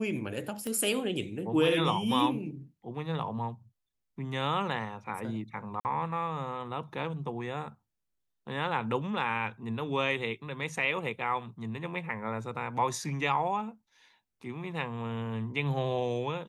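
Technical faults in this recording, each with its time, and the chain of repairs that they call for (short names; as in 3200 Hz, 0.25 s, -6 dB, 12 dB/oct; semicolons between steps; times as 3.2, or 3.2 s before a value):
0.67 pop -21 dBFS
5.8–5.85 gap 49 ms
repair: de-click; interpolate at 5.8, 49 ms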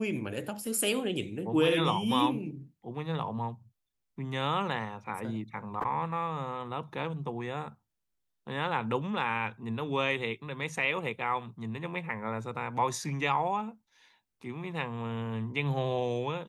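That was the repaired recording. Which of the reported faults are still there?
none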